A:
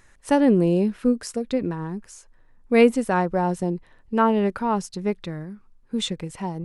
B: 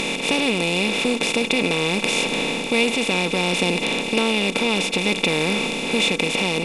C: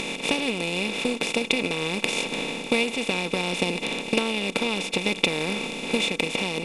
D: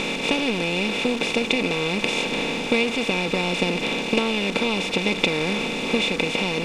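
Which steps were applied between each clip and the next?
per-bin compression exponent 0.2; resonant high shelf 2000 Hz +8 dB, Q 3; vocal rider 0.5 s; gain -8 dB
transient shaper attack +8 dB, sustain -4 dB; gain -6.5 dB
zero-crossing step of -26.5 dBFS; air absorption 77 m; gain +1 dB

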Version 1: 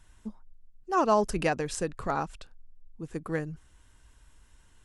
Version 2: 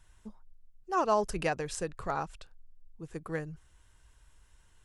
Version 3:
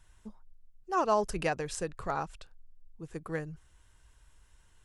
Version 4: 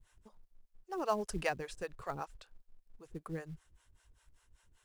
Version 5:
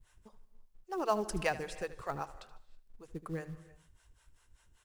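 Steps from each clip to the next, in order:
bell 250 Hz -7.5 dB 0.57 oct; gain -3 dB
nothing audible
harmonic tremolo 5.1 Hz, depth 100%, crossover 430 Hz; in parallel at -5 dB: short-mantissa float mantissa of 2-bit; on the sum: gain -4.5 dB
feedback echo 76 ms, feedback 36%, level -16 dB; on a send at -18 dB: reverb, pre-delay 3 ms; on the sum: gain +2 dB

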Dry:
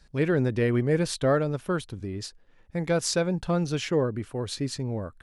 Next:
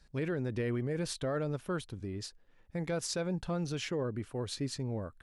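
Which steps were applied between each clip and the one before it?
limiter -20.5 dBFS, peak gain reduction 9 dB; gain -5.5 dB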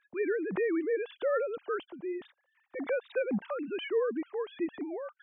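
sine-wave speech; gain +2.5 dB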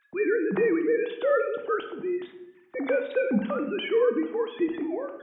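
reverb RT60 0.85 s, pre-delay 6 ms, DRR 5 dB; gain +5.5 dB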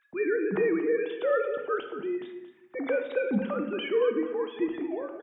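echo 0.228 s -12.5 dB; gain -2.5 dB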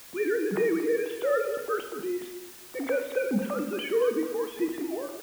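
requantised 8-bit, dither triangular

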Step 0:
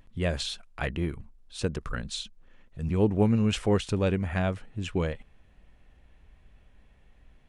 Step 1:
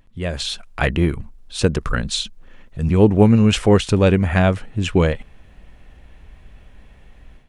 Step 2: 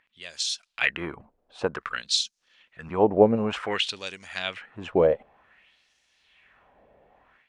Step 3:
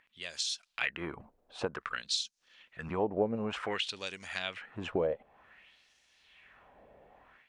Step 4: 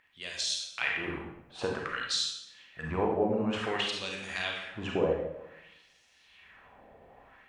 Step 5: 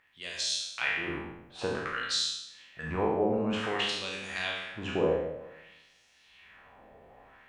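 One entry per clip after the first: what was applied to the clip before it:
AGC gain up to 11 dB; gain +1.5 dB
LFO band-pass sine 0.54 Hz 570–5900 Hz; gain +4 dB
compressor 2:1, threshold -36 dBFS, peak gain reduction 13.5 dB
reverb RT60 0.80 s, pre-delay 31 ms, DRR -1 dB
spectral trails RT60 0.69 s; gain -1.5 dB

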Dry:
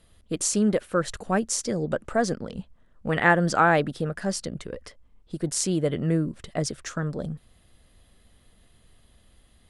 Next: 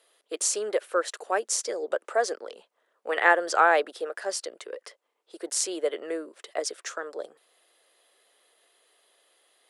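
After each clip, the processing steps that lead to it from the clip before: steep high-pass 390 Hz 36 dB/oct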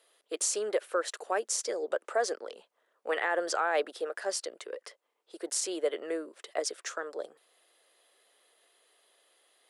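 limiter -16 dBFS, peak gain reduction 11.5 dB; gain -2 dB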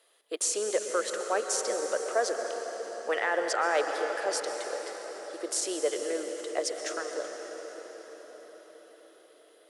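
reverb RT60 6.1 s, pre-delay 0.114 s, DRR 4 dB; gain +1 dB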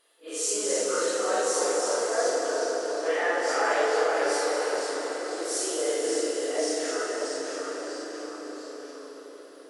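phase scrambler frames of 0.2 s; echoes that change speed 0.233 s, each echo -1 st, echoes 3, each echo -6 dB; FDN reverb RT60 3.6 s, high-frequency decay 0.7×, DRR 0.5 dB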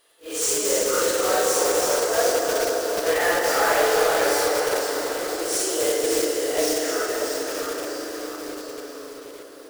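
block floating point 3-bit; gain +4.5 dB

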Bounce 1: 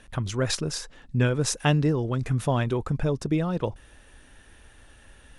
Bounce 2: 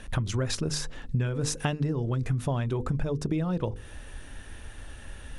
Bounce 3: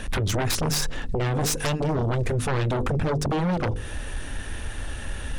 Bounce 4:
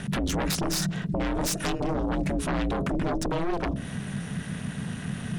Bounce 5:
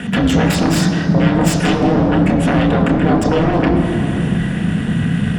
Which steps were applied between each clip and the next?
low shelf 220 Hz +6.5 dB; notches 50/100/150/200/250/300/350/400/450/500 Hz; compressor 10:1, threshold -30 dBFS, peak gain reduction 16 dB; gain +5.5 dB
sine folder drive 13 dB, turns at -14.5 dBFS; gain -6 dB
ring modulator 170 Hz
crossover distortion -59 dBFS; reverb RT60 3.5 s, pre-delay 3 ms, DRR 1 dB; gain +2.5 dB

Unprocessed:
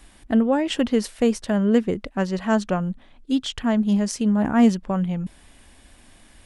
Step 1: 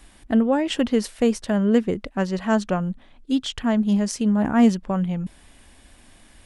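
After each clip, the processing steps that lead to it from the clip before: nothing audible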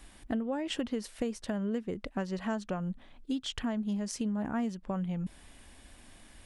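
compressor 6:1, threshold -27 dBFS, peak gain reduction 15 dB; gain -3.5 dB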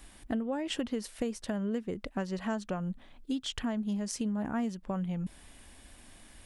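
high shelf 9000 Hz +5 dB

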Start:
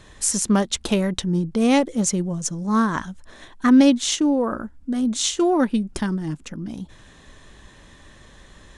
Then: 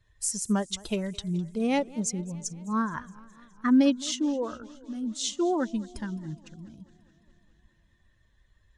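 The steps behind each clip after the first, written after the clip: per-bin expansion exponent 1.5; warbling echo 0.209 s, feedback 67%, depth 146 cents, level -21.5 dB; gain -6 dB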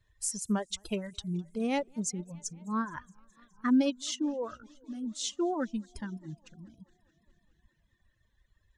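reverb removal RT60 0.86 s; gain -3.5 dB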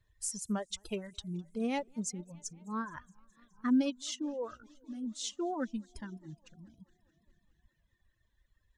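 phaser 0.28 Hz, delay 4.7 ms, feedback 23%; gain -4 dB

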